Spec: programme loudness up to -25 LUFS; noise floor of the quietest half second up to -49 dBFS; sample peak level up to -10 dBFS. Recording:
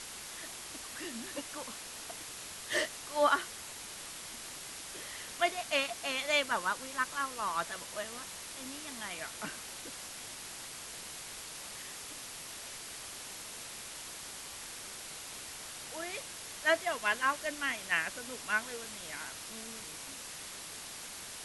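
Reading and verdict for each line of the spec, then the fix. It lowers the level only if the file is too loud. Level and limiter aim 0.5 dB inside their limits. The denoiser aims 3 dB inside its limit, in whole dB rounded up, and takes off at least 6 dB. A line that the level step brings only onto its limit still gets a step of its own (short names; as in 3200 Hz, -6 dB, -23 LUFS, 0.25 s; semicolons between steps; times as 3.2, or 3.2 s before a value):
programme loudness -36.5 LUFS: OK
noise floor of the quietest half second -46 dBFS: fail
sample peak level -15.0 dBFS: OK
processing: denoiser 6 dB, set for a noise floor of -46 dBFS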